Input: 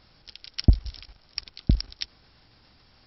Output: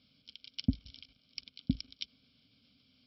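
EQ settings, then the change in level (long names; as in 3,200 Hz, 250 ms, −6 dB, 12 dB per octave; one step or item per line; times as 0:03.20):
formant filter i
high-pass filter 51 Hz
phaser with its sweep stopped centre 790 Hz, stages 4
+12.5 dB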